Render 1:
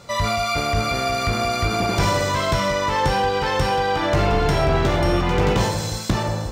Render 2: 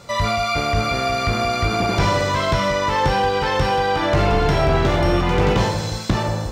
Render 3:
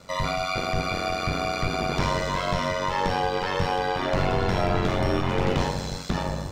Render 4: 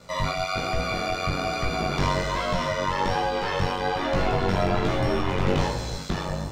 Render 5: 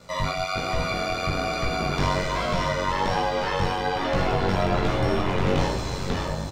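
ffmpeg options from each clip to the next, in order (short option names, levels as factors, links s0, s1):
-filter_complex "[0:a]acrossover=split=5600[s0][s1];[s1]acompressor=threshold=0.00708:ratio=4:attack=1:release=60[s2];[s0][s2]amix=inputs=2:normalize=0,volume=1.19"
-af "aeval=exprs='val(0)*sin(2*PI*46*n/s)':c=same,volume=0.668"
-af "flanger=delay=16.5:depth=4.7:speed=1.2,volume=1.41"
-af "aecho=1:1:595:0.398"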